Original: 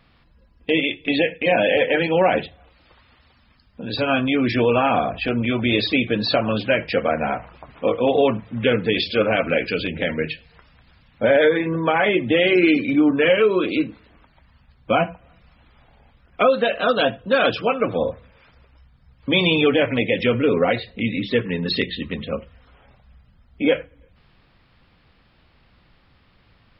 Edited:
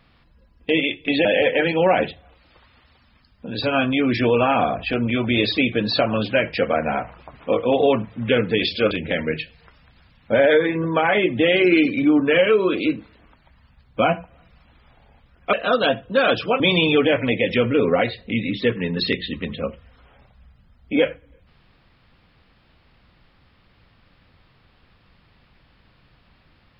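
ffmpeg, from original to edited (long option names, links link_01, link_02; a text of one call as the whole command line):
ffmpeg -i in.wav -filter_complex "[0:a]asplit=5[link_01][link_02][link_03][link_04][link_05];[link_01]atrim=end=1.252[link_06];[link_02]atrim=start=1.598:end=9.262[link_07];[link_03]atrim=start=9.818:end=16.442[link_08];[link_04]atrim=start=16.688:end=17.762[link_09];[link_05]atrim=start=19.288[link_10];[link_06][link_07]acrossfade=duration=0.004:curve1=hsin:curve2=hsin[link_11];[link_11][link_08]acrossfade=duration=0.004:curve1=hsin:curve2=hsin[link_12];[link_12][link_09]acrossfade=duration=0.004:curve1=hsin:curve2=hsin[link_13];[link_13][link_10]acrossfade=duration=0.004:curve1=hsin:curve2=hsin" out.wav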